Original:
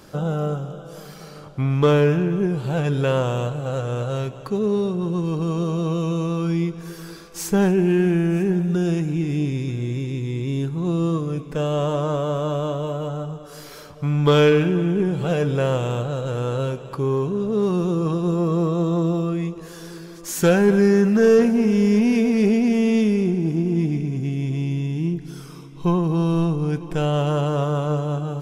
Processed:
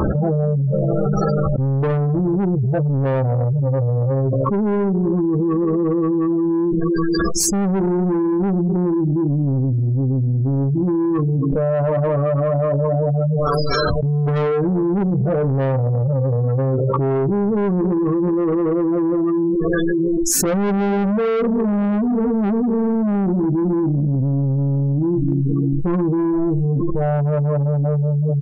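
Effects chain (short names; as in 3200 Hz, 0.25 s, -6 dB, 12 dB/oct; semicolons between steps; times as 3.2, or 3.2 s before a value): low shelf 470 Hz +4.5 dB; doubler 15 ms -4 dB; spectral gate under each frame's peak -15 dB strong; spectral noise reduction 6 dB; gate -32 dBFS, range -7 dB; bell 70 Hz +5.5 dB 0.51 oct; soft clip -17 dBFS, distortion -8 dB; fast leveller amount 100%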